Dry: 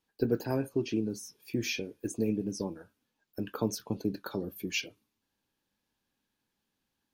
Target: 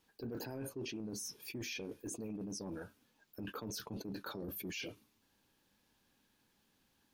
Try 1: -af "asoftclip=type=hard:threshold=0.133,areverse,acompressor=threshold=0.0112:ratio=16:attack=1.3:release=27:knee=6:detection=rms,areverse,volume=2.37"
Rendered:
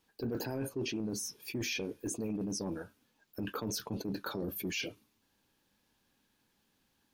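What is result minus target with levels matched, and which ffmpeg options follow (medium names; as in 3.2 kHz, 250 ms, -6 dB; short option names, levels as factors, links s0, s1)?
compression: peak gain reduction -7 dB
-af "asoftclip=type=hard:threshold=0.133,areverse,acompressor=threshold=0.00473:ratio=16:attack=1.3:release=27:knee=6:detection=rms,areverse,volume=2.37"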